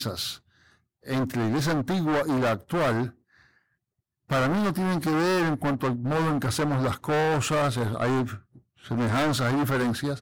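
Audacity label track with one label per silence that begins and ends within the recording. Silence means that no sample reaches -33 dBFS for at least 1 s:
3.090000	4.300000	silence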